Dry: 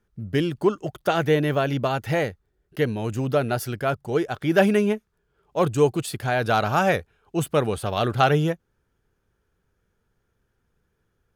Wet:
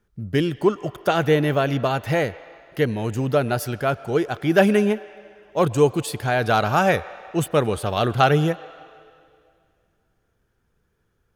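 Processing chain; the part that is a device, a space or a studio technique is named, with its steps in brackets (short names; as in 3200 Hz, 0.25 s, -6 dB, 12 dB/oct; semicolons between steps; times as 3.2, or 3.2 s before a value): filtered reverb send (on a send: HPF 540 Hz 12 dB/oct + LPF 4600 Hz 12 dB/oct + reverb RT60 2.3 s, pre-delay 96 ms, DRR 16.5 dB); on the sum: gain +2 dB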